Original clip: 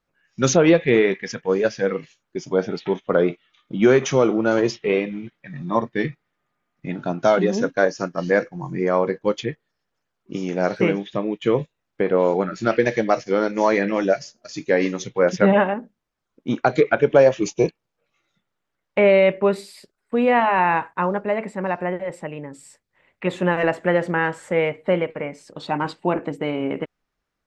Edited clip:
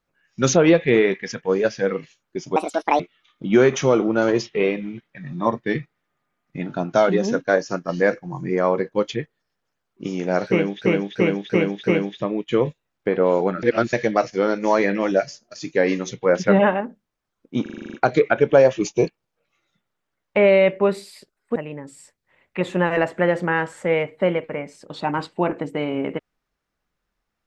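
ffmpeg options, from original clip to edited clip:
-filter_complex "[0:a]asplit=18[a][b][c][d][e][f][g][h][i][j][k][l][m][n][o][p][q][r];[a]atrim=end=2.564[s];[b]atrim=start=2.56:end=3.29,asetpts=PTS-STARTPTS,asetrate=73647,aresample=44100,atrim=end_sample=19277,asetpts=PTS-STARTPTS[t];[c]atrim=start=3.286:end=11.112[u];[d]atrim=start=10.768:end=11.112[v];[e]atrim=start=10.768:end=11.112[w];[f]atrim=start=10.768:end=11.112[x];[g]atrim=start=10.768:end=12.562[y];[h]atrim=start=12.558:end=12.862,asetpts=PTS-STARTPTS,areverse[z];[i]atrim=start=12.858:end=16.592[aa];[j]atrim=start=16.548:end=16.592[ab];[k]atrim=start=16.548:end=16.592[ac];[l]atrim=start=16.548:end=16.592[ad];[m]atrim=start=16.548:end=16.592[ae];[n]atrim=start=16.548:end=16.592[af];[o]atrim=start=16.548:end=16.592[ag];[p]atrim=start=16.548:end=16.592[ah];[q]atrim=start=16.548:end=20.172[ai];[r]atrim=start=22.218[aj];[s][t]acrossfade=d=0.004:c1=hsin:c2=hsin[ak];[ak][u]acrossfade=d=0.004:c1=hsin:c2=hsin[al];[al][v]acrossfade=d=0.004:c1=hsin:c2=hsin[am];[am][w]acrossfade=d=0.004:c1=hsin:c2=hsin[an];[an][x]acrossfade=d=0.004:c1=hsin:c2=hsin[ao];[ao][y]acrossfade=d=0.004:c1=hsin:c2=hsin[ap];[ap][z]acrossfade=d=0.004:c1=hsin:c2=hsin[aq];[aq][aa]acrossfade=d=0.004:c1=hsin:c2=hsin[ar];[ar][ab]acrossfade=d=0.004:c1=hsin:c2=hsin[as];[as][ac]acrossfade=d=0.004:c1=hsin:c2=hsin[at];[at][ad]acrossfade=d=0.004:c1=hsin:c2=hsin[au];[au][ae]acrossfade=d=0.004:c1=hsin:c2=hsin[av];[av][af]acrossfade=d=0.004:c1=hsin:c2=hsin[aw];[aw][ag]acrossfade=d=0.004:c1=hsin:c2=hsin[ax];[ax][ah]acrossfade=d=0.004:c1=hsin:c2=hsin[ay];[ay][ai]acrossfade=d=0.004:c1=hsin:c2=hsin[az];[az][aj]acrossfade=d=0.004:c1=hsin:c2=hsin"

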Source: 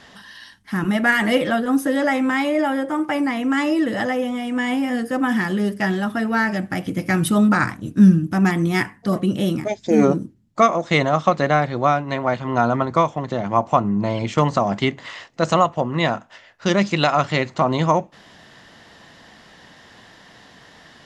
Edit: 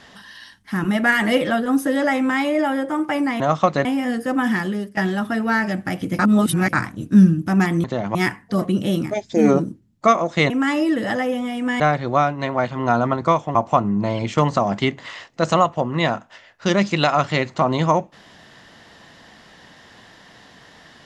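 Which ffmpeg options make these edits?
-filter_complex "[0:a]asplit=11[a][b][c][d][e][f][g][h][i][j][k];[a]atrim=end=3.402[l];[b]atrim=start=11.038:end=11.492[m];[c]atrim=start=4.698:end=5.82,asetpts=PTS-STARTPTS,afade=t=out:st=0.742:d=0.38:silence=0.177828[n];[d]atrim=start=5.82:end=7.042,asetpts=PTS-STARTPTS,afade=t=in:d=0.004:c=hsin:silence=0.177828[o];[e]atrim=start=7.038:end=7.582,asetpts=PTS-STARTPTS,areverse[p];[f]atrim=start=7.578:end=8.692[q];[g]atrim=start=13.238:end=13.552[r];[h]atrim=start=8.688:end=11.042[s];[i]atrim=start=3.398:end=4.702[t];[j]atrim=start=11.488:end=13.242[u];[k]atrim=start=13.548[v];[l][m]acrossfade=d=0.004:c1=hsin:c2=hsin[w];[n][o]concat=n=2:v=0:a=1[x];[w][x]acrossfade=d=0.004:c1=hsin:c2=hsin[y];[y][p]acrossfade=d=0.004:c1=hsin:c2=hsin[z];[z][q]acrossfade=d=0.004:c1=hsin:c2=hsin[aa];[aa][r]acrossfade=d=0.004:c1=hsin:c2=hsin[ab];[ab][s]acrossfade=d=0.004:c1=hsin:c2=hsin[ac];[ac][t]acrossfade=d=0.004:c1=hsin:c2=hsin[ad];[ad][u]acrossfade=d=0.004:c1=hsin:c2=hsin[ae];[ae][v]acrossfade=d=0.004:c1=hsin:c2=hsin"

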